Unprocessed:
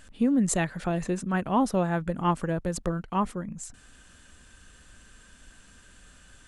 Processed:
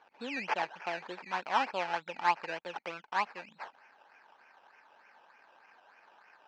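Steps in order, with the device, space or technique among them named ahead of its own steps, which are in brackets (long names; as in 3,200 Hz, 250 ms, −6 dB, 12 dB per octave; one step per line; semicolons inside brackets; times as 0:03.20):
circuit-bent sampling toy (sample-and-hold swept by an LFO 16×, swing 60% 3.3 Hz; loudspeaker in its box 580–4,800 Hz, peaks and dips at 870 Hz +10 dB, 1,600 Hz +5 dB, 2,500 Hz +8 dB, 3,600 Hz −6 dB)
level −6.5 dB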